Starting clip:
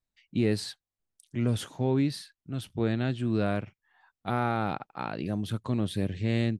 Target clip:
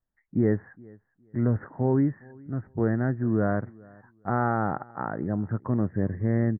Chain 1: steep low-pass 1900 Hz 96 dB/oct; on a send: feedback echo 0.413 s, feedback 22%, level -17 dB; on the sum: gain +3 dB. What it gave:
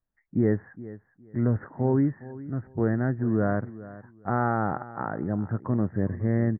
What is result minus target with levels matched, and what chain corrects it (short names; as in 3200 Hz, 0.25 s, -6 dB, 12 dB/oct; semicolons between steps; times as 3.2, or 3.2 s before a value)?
echo-to-direct +8 dB
steep low-pass 1900 Hz 96 dB/oct; on a send: feedback echo 0.413 s, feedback 22%, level -25 dB; on the sum: gain +3 dB